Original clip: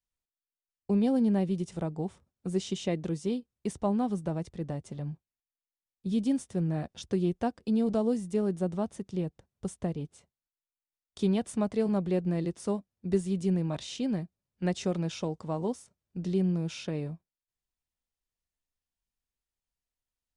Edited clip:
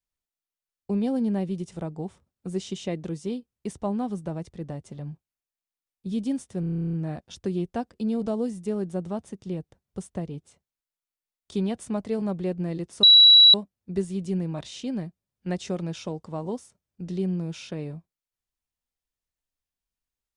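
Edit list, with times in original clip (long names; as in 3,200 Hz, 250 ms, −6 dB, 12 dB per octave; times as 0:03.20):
0:06.60: stutter 0.03 s, 12 plays
0:12.70: insert tone 3,910 Hz −9.5 dBFS 0.51 s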